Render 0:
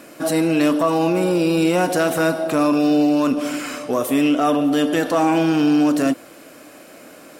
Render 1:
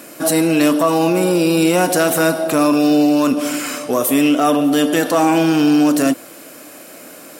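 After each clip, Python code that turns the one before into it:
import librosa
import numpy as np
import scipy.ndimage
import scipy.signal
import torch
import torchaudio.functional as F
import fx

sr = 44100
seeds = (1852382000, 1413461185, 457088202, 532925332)

y = scipy.signal.sosfilt(scipy.signal.butter(2, 93.0, 'highpass', fs=sr, output='sos'), x)
y = fx.high_shelf(y, sr, hz=7000.0, db=10.5)
y = y * librosa.db_to_amplitude(3.0)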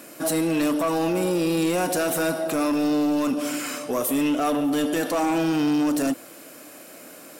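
y = 10.0 ** (-11.0 / 20.0) * np.tanh(x / 10.0 ** (-11.0 / 20.0))
y = y * librosa.db_to_amplitude(-6.0)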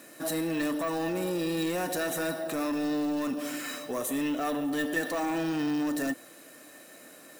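y = fx.small_body(x, sr, hz=(1800.0, 3900.0), ring_ms=90, db=18)
y = np.repeat(y[::2], 2)[:len(y)]
y = y * librosa.db_to_amplitude(-7.5)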